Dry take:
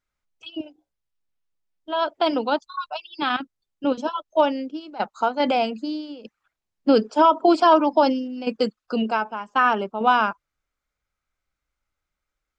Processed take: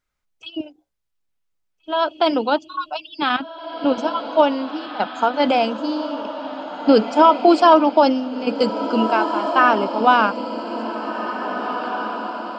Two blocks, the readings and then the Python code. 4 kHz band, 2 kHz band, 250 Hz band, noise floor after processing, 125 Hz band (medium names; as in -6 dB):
+4.0 dB, +4.0 dB, +4.0 dB, -72 dBFS, no reading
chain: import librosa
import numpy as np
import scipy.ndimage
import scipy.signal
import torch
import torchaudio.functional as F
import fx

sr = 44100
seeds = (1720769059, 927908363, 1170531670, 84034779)

y = fx.echo_diffused(x, sr, ms=1857, feedback_pct=50, wet_db=-9.0)
y = y * 10.0 ** (3.5 / 20.0)